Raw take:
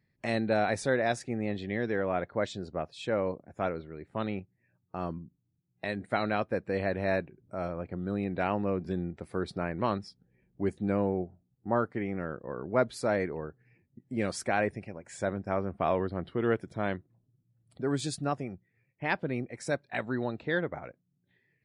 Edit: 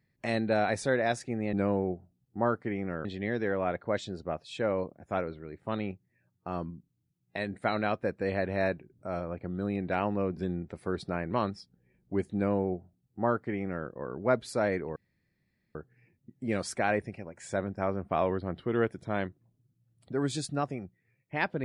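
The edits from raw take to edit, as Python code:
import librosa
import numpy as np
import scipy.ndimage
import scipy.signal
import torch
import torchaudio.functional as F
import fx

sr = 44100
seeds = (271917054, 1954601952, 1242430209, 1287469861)

y = fx.edit(x, sr, fx.duplicate(start_s=10.83, length_s=1.52, to_s=1.53),
    fx.insert_room_tone(at_s=13.44, length_s=0.79), tone=tone)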